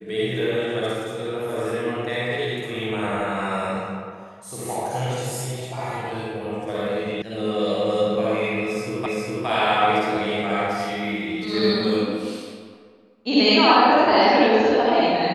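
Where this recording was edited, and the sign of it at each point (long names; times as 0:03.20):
0:07.22: cut off before it has died away
0:09.06: the same again, the last 0.41 s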